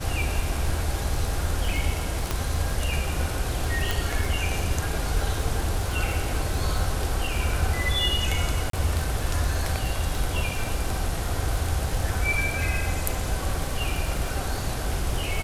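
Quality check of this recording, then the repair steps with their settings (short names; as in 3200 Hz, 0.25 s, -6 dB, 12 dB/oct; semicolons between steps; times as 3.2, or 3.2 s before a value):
crackle 57/s -31 dBFS
2.31 pop -10 dBFS
3.91 pop
8.7–8.73 gap 33 ms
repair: de-click; interpolate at 8.7, 33 ms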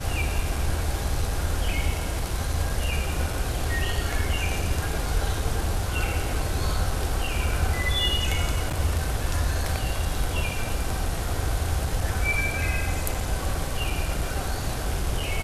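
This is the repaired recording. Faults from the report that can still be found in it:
none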